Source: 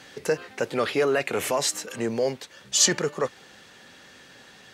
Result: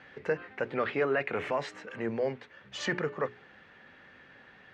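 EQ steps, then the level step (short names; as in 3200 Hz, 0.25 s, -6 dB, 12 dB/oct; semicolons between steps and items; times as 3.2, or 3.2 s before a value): synth low-pass 2000 Hz, resonance Q 1.5; low shelf 160 Hz +4.5 dB; notches 60/120/180/240/300/360/420 Hz; -6.5 dB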